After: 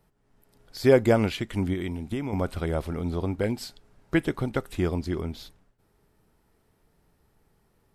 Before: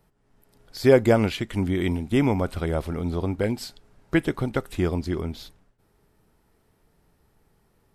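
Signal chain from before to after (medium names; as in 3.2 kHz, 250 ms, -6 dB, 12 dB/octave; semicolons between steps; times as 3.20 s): 1.73–2.33 s: compression 12:1, threshold -25 dBFS, peak gain reduction 9.5 dB; trim -2 dB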